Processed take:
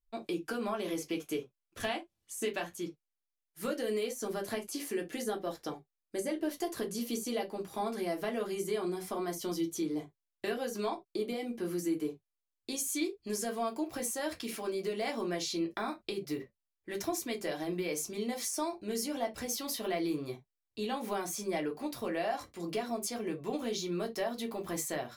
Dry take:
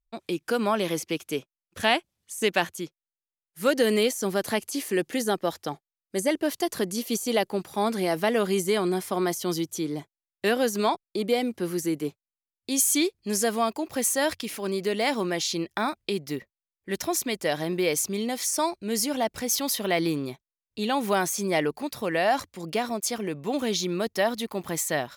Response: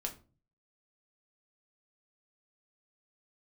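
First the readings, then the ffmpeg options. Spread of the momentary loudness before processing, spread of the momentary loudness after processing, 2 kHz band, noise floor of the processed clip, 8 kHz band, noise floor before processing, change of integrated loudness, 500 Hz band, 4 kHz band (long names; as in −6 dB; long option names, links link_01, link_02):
8 LU, 6 LU, −11.5 dB, below −85 dBFS, −10.0 dB, below −85 dBFS, −9.0 dB, −8.5 dB, −10.5 dB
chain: -filter_complex "[0:a]equalizer=frequency=440:width=1.5:gain=2,acompressor=threshold=-28dB:ratio=4[link_01];[1:a]atrim=start_sample=2205,afade=type=out:start_time=0.19:duration=0.01,atrim=end_sample=8820,asetrate=74970,aresample=44100[link_02];[link_01][link_02]afir=irnorm=-1:irlink=0"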